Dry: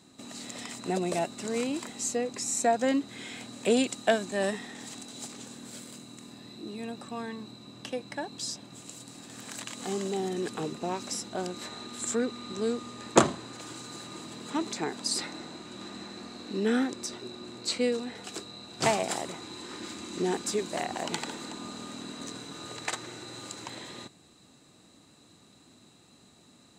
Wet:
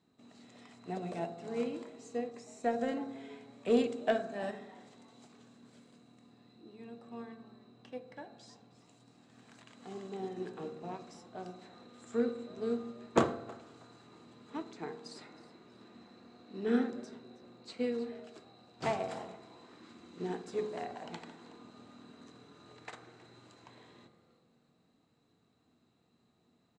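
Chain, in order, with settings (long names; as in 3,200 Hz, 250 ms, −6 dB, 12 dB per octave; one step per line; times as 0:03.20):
high-frequency loss of the air 52 metres
in parallel at −5 dB: hard clipping −21 dBFS, distortion −12 dB
on the sum: high-shelf EQ 4,800 Hz −11 dB
echo with shifted repeats 318 ms, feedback 34%, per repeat +150 Hz, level −17 dB
on a send at −5 dB: convolution reverb RT60 1.2 s, pre-delay 3 ms
on the sum: expander for the loud parts 1.5 to 1, over −34 dBFS
level −8 dB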